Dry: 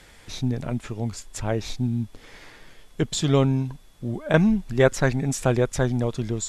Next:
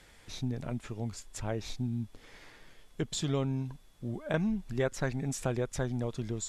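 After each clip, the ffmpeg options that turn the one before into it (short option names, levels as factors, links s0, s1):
-af "acompressor=threshold=0.0794:ratio=2,volume=0.422"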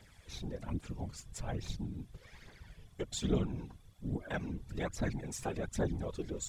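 -af "aphaser=in_gain=1:out_gain=1:delay=3:decay=0.62:speed=1.2:type=triangular,afftfilt=real='hypot(re,im)*cos(2*PI*random(0))':imag='hypot(re,im)*sin(2*PI*random(1))':win_size=512:overlap=0.75"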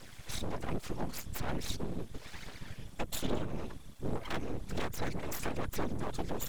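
-filter_complex "[0:a]acrossover=split=110|340|7100[s0][s1][s2][s3];[s0]acompressor=threshold=0.00562:ratio=4[s4];[s1]acompressor=threshold=0.00355:ratio=4[s5];[s2]acompressor=threshold=0.00447:ratio=4[s6];[s3]acompressor=threshold=0.00178:ratio=4[s7];[s4][s5][s6][s7]amix=inputs=4:normalize=0,aeval=exprs='abs(val(0))':c=same,volume=3.55"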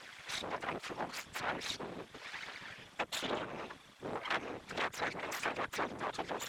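-af "bandpass=f=1800:t=q:w=0.69:csg=0,volume=2.11"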